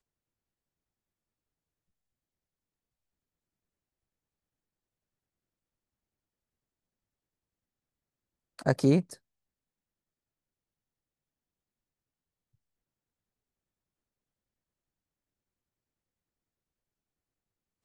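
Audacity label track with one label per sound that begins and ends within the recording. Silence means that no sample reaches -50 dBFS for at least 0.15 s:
8.590000	9.150000	sound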